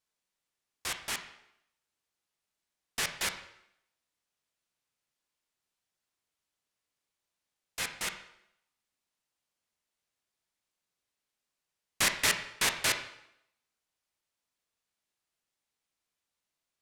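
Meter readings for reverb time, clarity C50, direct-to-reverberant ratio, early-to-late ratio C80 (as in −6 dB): 0.75 s, 9.5 dB, 6.5 dB, 12.5 dB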